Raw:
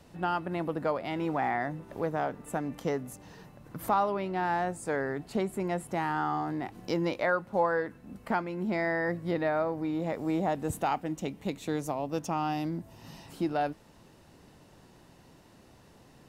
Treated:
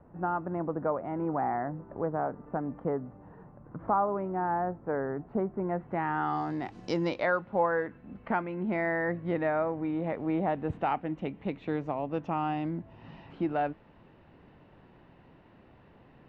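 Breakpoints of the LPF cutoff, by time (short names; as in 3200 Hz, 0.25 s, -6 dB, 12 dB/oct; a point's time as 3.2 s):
LPF 24 dB/oct
5.59 s 1400 Hz
6.19 s 2700 Hz
6.42 s 6500 Hz
7.01 s 6500 Hz
7.55 s 2800 Hz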